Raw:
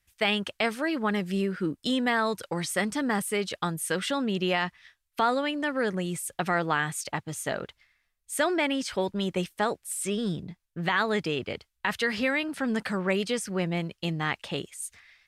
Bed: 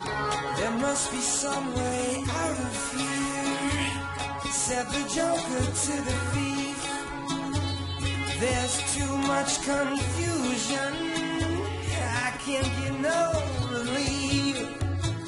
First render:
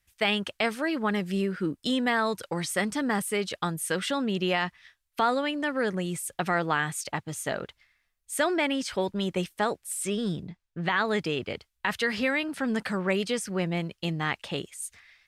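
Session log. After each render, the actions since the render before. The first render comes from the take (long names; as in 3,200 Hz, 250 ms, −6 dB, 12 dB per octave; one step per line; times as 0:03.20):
0:10.48–0:11.05: high-frequency loss of the air 62 metres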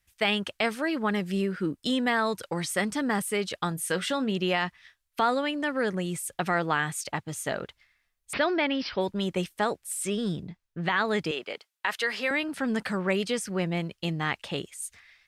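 0:03.69–0:04.32: double-tracking delay 23 ms −13.5 dB
0:08.33–0:09.01: bad sample-rate conversion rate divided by 4×, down none, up filtered
0:11.31–0:12.31: high-pass filter 450 Hz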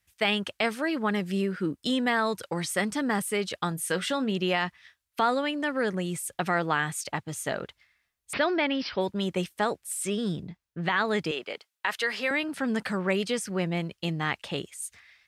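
high-pass filter 52 Hz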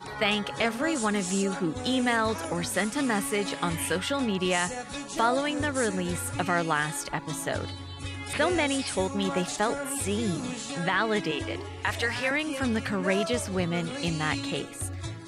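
mix in bed −7.5 dB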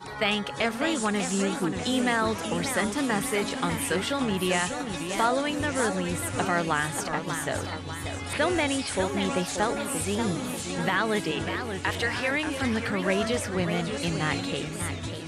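feedback echo with a swinging delay time 590 ms, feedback 52%, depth 204 cents, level −8 dB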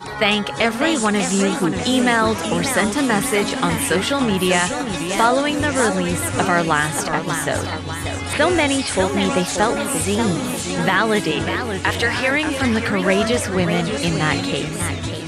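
level +8.5 dB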